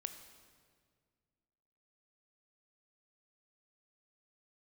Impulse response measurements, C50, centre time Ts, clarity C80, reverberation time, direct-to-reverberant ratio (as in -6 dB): 9.5 dB, 20 ms, 10.5 dB, 1.9 s, 8.0 dB